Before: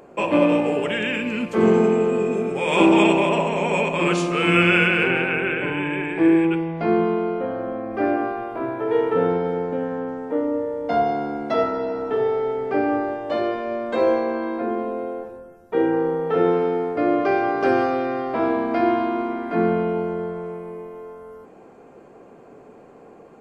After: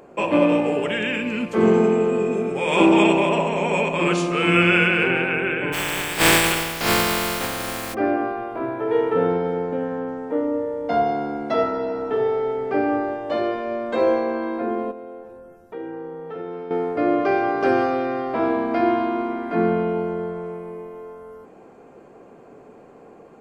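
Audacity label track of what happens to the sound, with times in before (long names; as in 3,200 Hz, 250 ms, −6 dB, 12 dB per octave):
5.720000	7.930000	compressing power law on the bin magnitudes exponent 0.24
14.910000	16.710000	downward compressor 2 to 1, threshold −40 dBFS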